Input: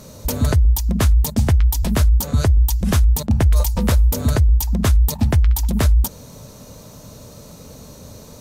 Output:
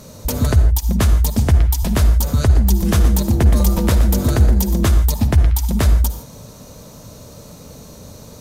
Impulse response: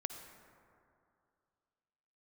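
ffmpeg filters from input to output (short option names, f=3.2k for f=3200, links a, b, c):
-filter_complex "[0:a]asettb=1/sr,asplit=3[a][b][c];[a]atrim=end=2.434[d];[b]atrim=start=2.43:end=4.87,asetpts=PTS-STARTPTS,afade=t=in:d=0.004:c=qsin,afade=t=out:st=2.436:d=0.004:c=qsin,asplit=5[e][f][g][h][i];[f]adelay=120,afreqshift=140,volume=-12dB[j];[g]adelay=240,afreqshift=280,volume=-19.5dB[k];[h]adelay=360,afreqshift=420,volume=-27.1dB[l];[i]adelay=480,afreqshift=560,volume=-34.6dB[m];[e][j][k][l][m]amix=inputs=5:normalize=0,atrim=end_sample=107604[n];[c]atrim=start=4.866[o];[d][n]acrossfade=d=0.004:c1=hsin:c2=qsin[p];[p][o]acrossfade=d=0.004:c1=qsin:c2=hsin[q];[1:a]atrim=start_sample=2205,afade=t=out:st=0.22:d=0.01,atrim=end_sample=10143[r];[q][r]afir=irnorm=-1:irlink=0,volume=2.5dB"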